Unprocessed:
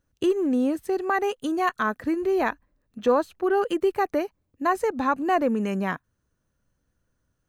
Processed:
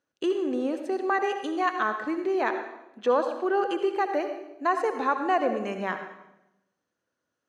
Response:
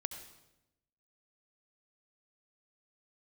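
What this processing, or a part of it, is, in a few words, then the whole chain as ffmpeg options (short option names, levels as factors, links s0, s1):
supermarket ceiling speaker: -filter_complex "[0:a]highpass=340,lowpass=6100[s0];[1:a]atrim=start_sample=2205[s1];[s0][s1]afir=irnorm=-1:irlink=0"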